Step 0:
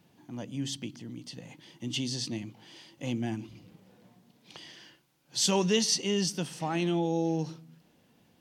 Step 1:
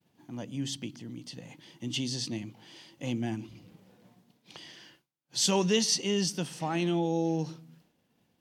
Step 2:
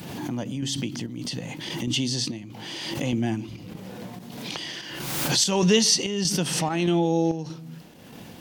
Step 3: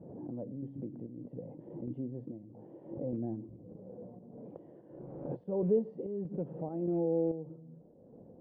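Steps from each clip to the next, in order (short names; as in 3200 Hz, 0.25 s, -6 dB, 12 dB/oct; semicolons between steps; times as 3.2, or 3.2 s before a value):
expander -57 dBFS
upward compressor, threshold -31 dBFS; chopper 1.6 Hz, depth 60%, duty 70%; backwards sustainer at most 34 dB/s; gain +6.5 dB
rattling part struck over -23 dBFS, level -19 dBFS; ladder low-pass 600 Hz, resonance 55%; gain -3 dB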